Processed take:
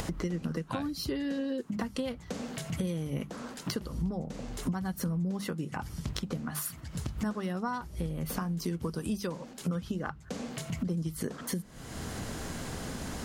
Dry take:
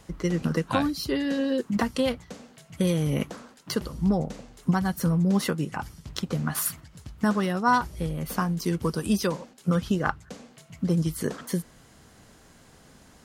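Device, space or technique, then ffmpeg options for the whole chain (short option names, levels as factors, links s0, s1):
upward and downward compression: -af "acompressor=mode=upward:threshold=0.0501:ratio=2.5,acompressor=threshold=0.0224:ratio=6,lowshelf=f=360:g=4.5,bandreject=f=50:t=h:w=6,bandreject=f=100:t=h:w=6,bandreject=f=150:t=h:w=6,bandreject=f=200:t=h:w=6"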